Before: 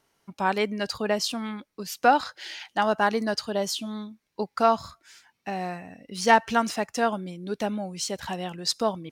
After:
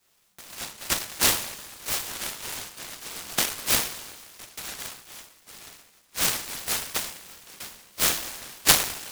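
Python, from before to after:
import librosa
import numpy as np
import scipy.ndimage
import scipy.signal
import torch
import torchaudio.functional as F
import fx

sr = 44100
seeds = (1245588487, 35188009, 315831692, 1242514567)

y = scipy.signal.sosfilt(scipy.signal.cheby2(4, 50, 1700.0, 'highpass', fs=sr, output='sos'), x)
y = fx.rev_double_slope(y, sr, seeds[0], early_s=0.43, late_s=2.3, knee_db=-18, drr_db=-8.0)
y = fx.noise_mod_delay(y, sr, seeds[1], noise_hz=1400.0, depth_ms=0.15)
y = y * librosa.db_to_amplitude(2.5)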